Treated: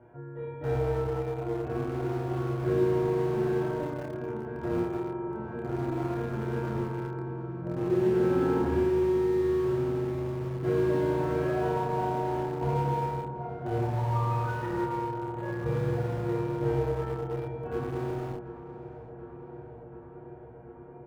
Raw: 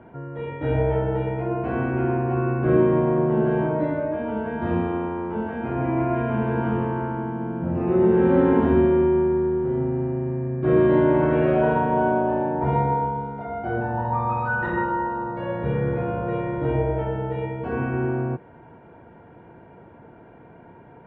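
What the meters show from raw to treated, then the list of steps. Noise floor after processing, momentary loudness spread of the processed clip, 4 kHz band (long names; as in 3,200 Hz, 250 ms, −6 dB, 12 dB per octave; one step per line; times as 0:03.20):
−46 dBFS, 17 LU, can't be measured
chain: parametric band 220 Hz −7 dB 0.54 octaves
notch filter 1,000 Hz, Q 18
tuned comb filter 120 Hz, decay 0.21 s, harmonics all, mix 90%
repeating echo 216 ms, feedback 58%, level −19 dB
in parallel at −11.5 dB: bit reduction 5 bits
on the sum: high-shelf EQ 2,600 Hz −11.5 dB
double-tracking delay 28 ms −3.5 dB
on a send: feedback echo with a low-pass in the loop 733 ms, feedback 83%, low-pass 2,300 Hz, level −14.5 dB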